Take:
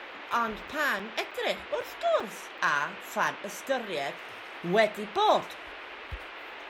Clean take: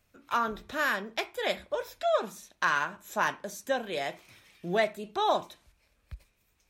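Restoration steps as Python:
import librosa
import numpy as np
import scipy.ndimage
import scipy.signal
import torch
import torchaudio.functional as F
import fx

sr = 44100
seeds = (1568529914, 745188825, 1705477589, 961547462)

y = fx.fix_interpolate(x, sr, at_s=(0.68, 0.99, 1.31, 1.81, 2.2, 2.58, 6.08), length_ms=4.3)
y = fx.noise_reduce(y, sr, print_start_s=5.59, print_end_s=6.09, reduce_db=27.0)
y = fx.fix_level(y, sr, at_s=4.62, step_db=-3.0)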